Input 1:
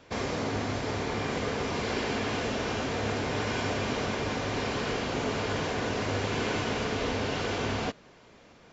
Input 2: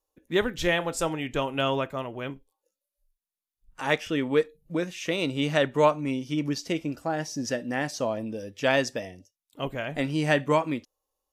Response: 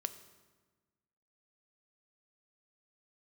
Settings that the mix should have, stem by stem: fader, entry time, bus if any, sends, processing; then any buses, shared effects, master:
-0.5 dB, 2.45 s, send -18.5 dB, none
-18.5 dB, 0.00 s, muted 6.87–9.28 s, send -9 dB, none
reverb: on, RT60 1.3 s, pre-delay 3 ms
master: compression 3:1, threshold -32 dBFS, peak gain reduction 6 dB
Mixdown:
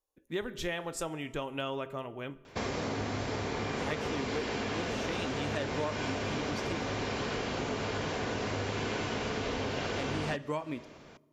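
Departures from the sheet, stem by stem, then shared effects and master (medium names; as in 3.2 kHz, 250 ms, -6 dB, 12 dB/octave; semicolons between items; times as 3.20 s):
stem 2 -18.5 dB -> -10.5 dB; reverb return +7.0 dB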